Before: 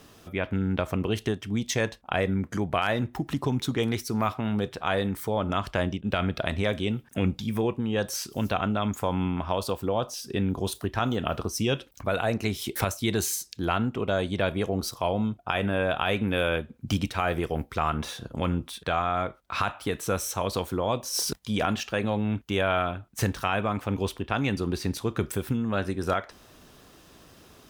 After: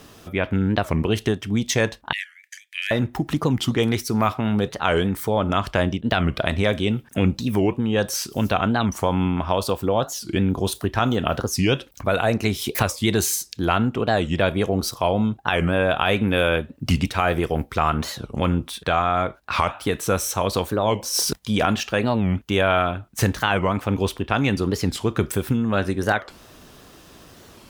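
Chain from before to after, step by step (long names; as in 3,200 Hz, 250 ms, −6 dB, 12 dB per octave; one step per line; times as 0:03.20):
0:02.14–0:02.91: Chebyshev high-pass with heavy ripple 1,700 Hz, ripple 3 dB
wow of a warped record 45 rpm, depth 250 cents
level +6 dB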